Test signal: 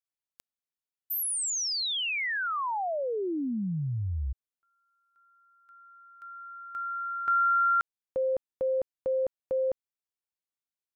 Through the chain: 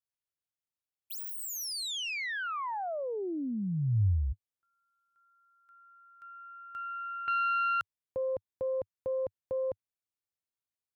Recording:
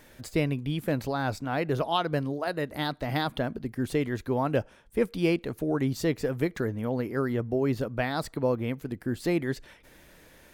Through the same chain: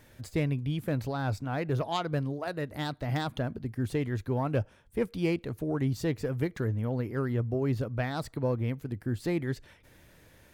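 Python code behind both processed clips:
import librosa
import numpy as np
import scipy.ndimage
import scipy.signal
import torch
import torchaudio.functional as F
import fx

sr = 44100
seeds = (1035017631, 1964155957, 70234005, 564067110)

y = fx.self_delay(x, sr, depth_ms=0.057)
y = fx.peak_eq(y, sr, hz=100.0, db=10.5, octaves=1.0)
y = F.gain(torch.from_numpy(y), -4.5).numpy()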